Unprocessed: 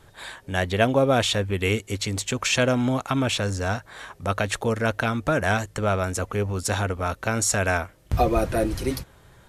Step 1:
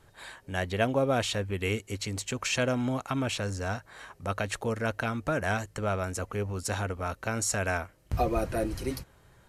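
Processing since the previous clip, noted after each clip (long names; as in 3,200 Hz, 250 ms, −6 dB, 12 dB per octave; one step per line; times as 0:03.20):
notch filter 3,500 Hz, Q 13
level −6.5 dB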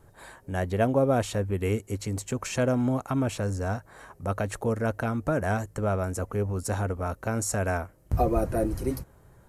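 parametric band 3,300 Hz −13 dB 2.2 octaves
level +4.5 dB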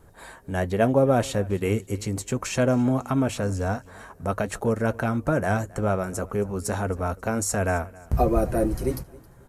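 flanger 0.27 Hz, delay 4.1 ms, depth 1.8 ms, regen −67%
repeating echo 269 ms, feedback 32%, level −22.5 dB
level +7.5 dB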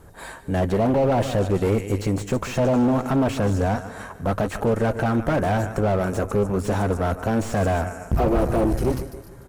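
repeating echo 149 ms, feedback 48%, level −16.5 dB
tube saturation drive 24 dB, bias 0.6
slew-rate limiting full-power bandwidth 32 Hz
level +9 dB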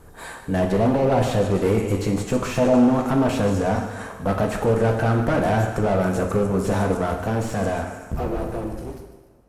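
fade-out on the ending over 2.68 s
on a send at −3 dB: convolution reverb, pre-delay 3 ms
on the sum: SBC 128 kbit/s 48,000 Hz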